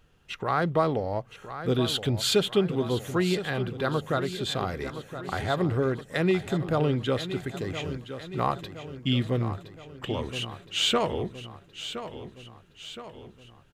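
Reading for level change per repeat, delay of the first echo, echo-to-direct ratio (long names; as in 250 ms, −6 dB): −5.5 dB, 1,018 ms, −10.0 dB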